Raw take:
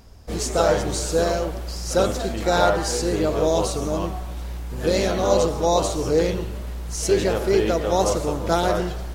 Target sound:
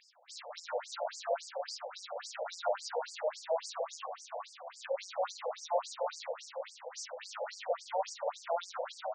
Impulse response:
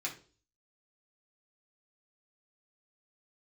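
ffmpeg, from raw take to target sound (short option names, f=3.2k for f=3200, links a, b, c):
-filter_complex "[0:a]acrossover=split=4900[a][b];[b]acompressor=threshold=-37dB:ratio=4:attack=1:release=60[c];[a][c]amix=inputs=2:normalize=0,alimiter=limit=-13.5dB:level=0:latency=1:release=342,acrossover=split=1400|8000[d][e][f];[d]acompressor=threshold=-23dB:ratio=4[g];[e]acompressor=threshold=-39dB:ratio=4[h];[f]acompressor=threshold=-52dB:ratio=4[i];[g][h][i]amix=inputs=3:normalize=0,asplit=2[j][k];[k]asplit=4[l][m][n][o];[l]adelay=379,afreqshift=33,volume=-6.5dB[p];[m]adelay=758,afreqshift=66,volume=-14.9dB[q];[n]adelay=1137,afreqshift=99,volume=-23.3dB[r];[o]adelay=1516,afreqshift=132,volume=-31.7dB[s];[p][q][r][s]amix=inputs=4:normalize=0[t];[j][t]amix=inputs=2:normalize=0,afftfilt=real='re*between(b*sr/1024,630*pow(6500/630,0.5+0.5*sin(2*PI*3.6*pts/sr))/1.41,630*pow(6500/630,0.5+0.5*sin(2*PI*3.6*pts/sr))*1.41)':imag='im*between(b*sr/1024,630*pow(6500/630,0.5+0.5*sin(2*PI*3.6*pts/sr))/1.41,630*pow(6500/630,0.5+0.5*sin(2*PI*3.6*pts/sr))*1.41)':win_size=1024:overlap=0.75,volume=-1.5dB"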